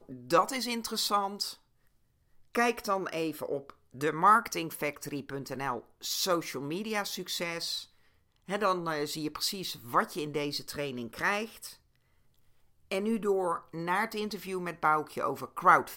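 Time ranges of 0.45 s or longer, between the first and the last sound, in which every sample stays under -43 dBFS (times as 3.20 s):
1.54–2.55 s
7.84–8.48 s
11.73–12.91 s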